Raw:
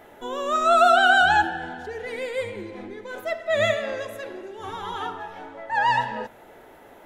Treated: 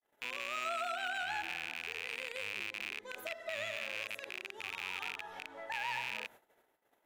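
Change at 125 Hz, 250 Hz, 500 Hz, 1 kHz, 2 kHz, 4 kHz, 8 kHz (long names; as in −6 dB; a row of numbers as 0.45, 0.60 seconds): −22.5, −22.0, −21.0, −20.5, −14.0, −11.0, −10.0 decibels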